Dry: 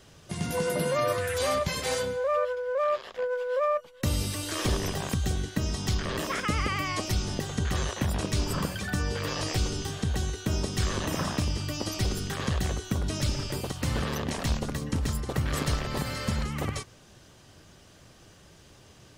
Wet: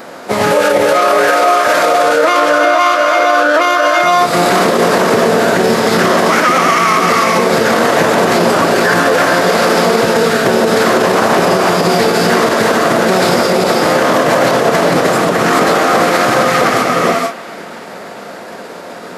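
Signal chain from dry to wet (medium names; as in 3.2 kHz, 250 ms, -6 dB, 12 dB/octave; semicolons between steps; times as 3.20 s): median filter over 15 samples; high-pass 330 Hz 24 dB/octave; band-passed feedback delay 354 ms, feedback 69%, band-pass 2.3 kHz, level -20.5 dB; formant-preserving pitch shift -9 st; gated-style reverb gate 500 ms rising, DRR 2 dB; compression, threshold -33 dBFS, peak gain reduction 12 dB; loudness maximiser +32.5 dB; trim -1 dB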